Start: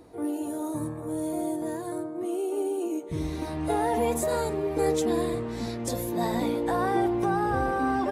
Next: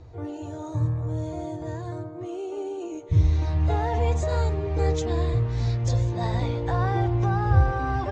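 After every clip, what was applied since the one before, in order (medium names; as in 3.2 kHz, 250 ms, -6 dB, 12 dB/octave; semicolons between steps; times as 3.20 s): elliptic low-pass 6.8 kHz, stop band 50 dB; resonant low shelf 150 Hz +13 dB, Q 3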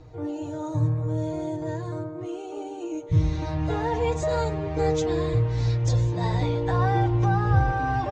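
comb 6.5 ms, depth 61%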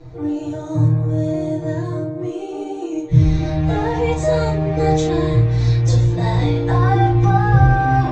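reverberation, pre-delay 6 ms, DRR -7 dB; trim -1 dB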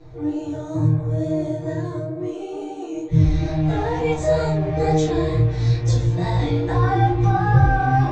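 chorus 2.2 Hz, delay 19 ms, depth 5.2 ms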